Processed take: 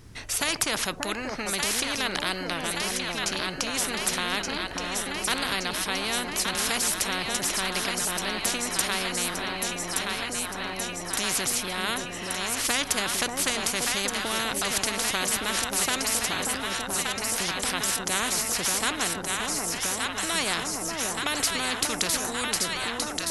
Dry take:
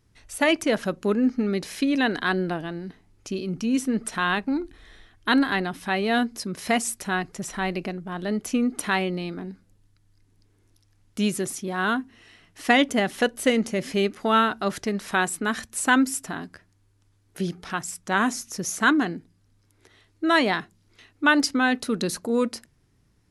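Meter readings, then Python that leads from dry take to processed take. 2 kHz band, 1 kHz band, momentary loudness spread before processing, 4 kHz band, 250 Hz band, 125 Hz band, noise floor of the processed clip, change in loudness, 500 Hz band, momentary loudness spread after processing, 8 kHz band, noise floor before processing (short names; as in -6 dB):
-2.5 dB, -3.5 dB, 12 LU, +6.0 dB, -10.5 dB, -5.5 dB, -35 dBFS, -1.5 dB, -6.0 dB, 5 LU, +9.0 dB, -64 dBFS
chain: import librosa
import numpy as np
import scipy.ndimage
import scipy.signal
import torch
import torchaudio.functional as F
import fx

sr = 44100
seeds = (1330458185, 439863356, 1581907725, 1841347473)

p1 = x + fx.echo_alternate(x, sr, ms=586, hz=820.0, feedback_pct=79, wet_db=-7, dry=0)
p2 = fx.spectral_comp(p1, sr, ratio=4.0)
y = p2 * librosa.db_to_amplitude(-2.0)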